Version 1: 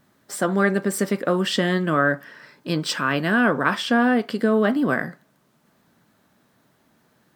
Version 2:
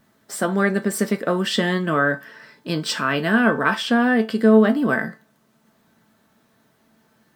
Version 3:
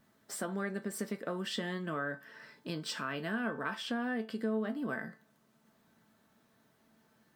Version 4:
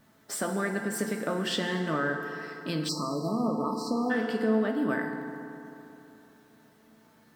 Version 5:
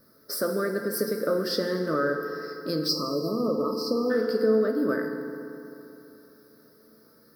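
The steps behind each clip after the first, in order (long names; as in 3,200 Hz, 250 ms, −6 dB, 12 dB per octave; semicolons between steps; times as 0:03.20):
tuned comb filter 220 Hz, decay 0.23 s, harmonics all, mix 70%; level +8.5 dB
downward compressor 2 to 1, threshold −32 dBFS, peak gain reduction 13 dB; level −8 dB
feedback delay network reverb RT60 3.1 s, high-frequency decay 0.55×, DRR 4 dB; time-frequency box erased 0:02.89–0:04.10, 1,300–3,900 Hz; level +6.5 dB
drawn EQ curve 210 Hz 0 dB, 540 Hz +11 dB, 790 Hz −13 dB, 1,300 Hz +6 dB, 3,000 Hz −17 dB, 5,000 Hz +14 dB, 7,300 Hz −13 dB, 11,000 Hz +12 dB; level −1.5 dB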